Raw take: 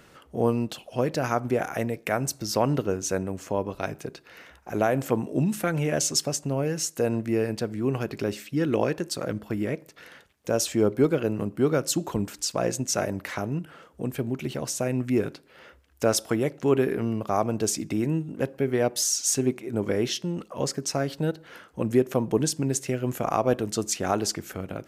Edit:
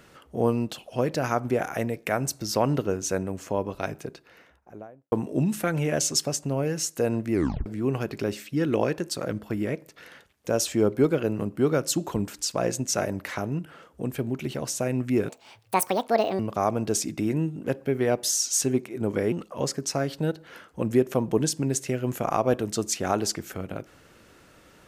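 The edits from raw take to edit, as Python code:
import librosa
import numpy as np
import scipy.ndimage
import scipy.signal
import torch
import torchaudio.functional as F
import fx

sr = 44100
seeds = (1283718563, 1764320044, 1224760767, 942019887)

y = fx.studio_fade_out(x, sr, start_s=3.86, length_s=1.26)
y = fx.edit(y, sr, fx.tape_stop(start_s=7.33, length_s=0.33),
    fx.speed_span(start_s=15.29, length_s=1.83, speed=1.66),
    fx.cut(start_s=20.05, length_s=0.27), tone=tone)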